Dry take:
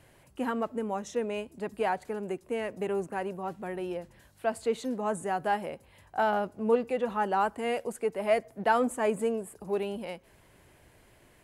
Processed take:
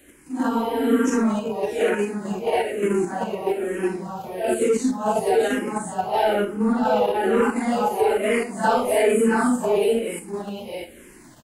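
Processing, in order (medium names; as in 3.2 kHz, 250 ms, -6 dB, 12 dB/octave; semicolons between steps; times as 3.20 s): phase randomisation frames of 200 ms; peaking EQ 300 Hz +9.5 dB 0.94 oct; on a send: delay 670 ms -3.5 dB; on the sum: spring tank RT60 1.6 s, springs 34 ms, DRR 16.5 dB; in parallel at +2 dB: level held to a coarse grid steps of 14 dB; on the sum: saturation -10 dBFS, distortion -23 dB; treble shelf 3.4 kHz +9 dB; spectral freeze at 0.51 s, 0.55 s; barber-pole phaser -1.1 Hz; trim +3 dB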